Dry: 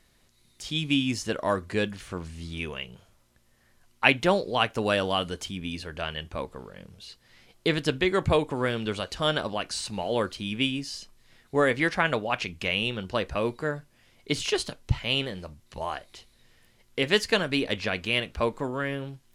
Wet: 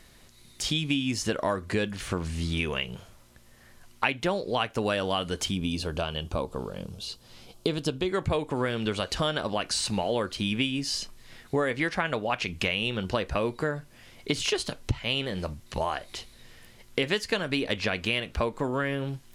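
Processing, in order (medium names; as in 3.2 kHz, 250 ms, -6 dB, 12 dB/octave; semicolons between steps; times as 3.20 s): compression 5:1, threshold -34 dBFS, peak gain reduction 17.5 dB; 5.54–8.09 s: peaking EQ 1.9 kHz -14 dB 0.61 oct; trim +9 dB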